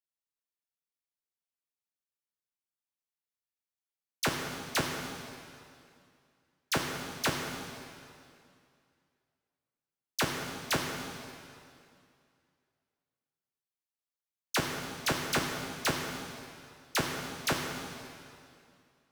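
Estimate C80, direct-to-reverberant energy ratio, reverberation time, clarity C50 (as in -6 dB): 4.0 dB, 1.0 dB, 2.4 s, 2.5 dB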